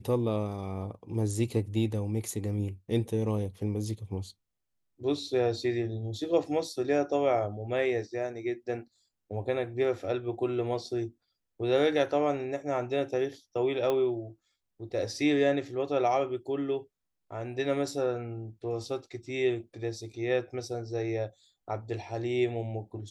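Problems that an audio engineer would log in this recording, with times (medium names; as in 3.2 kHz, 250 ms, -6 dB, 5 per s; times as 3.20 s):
13.90 s: pop -17 dBFS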